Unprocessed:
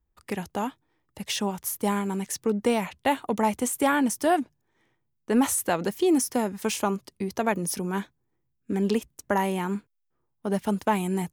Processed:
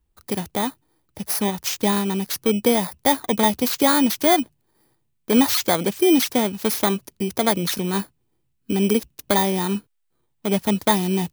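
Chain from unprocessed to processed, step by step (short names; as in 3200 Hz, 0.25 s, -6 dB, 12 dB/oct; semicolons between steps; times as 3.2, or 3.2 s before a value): FFT order left unsorted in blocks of 16 samples; gain +5.5 dB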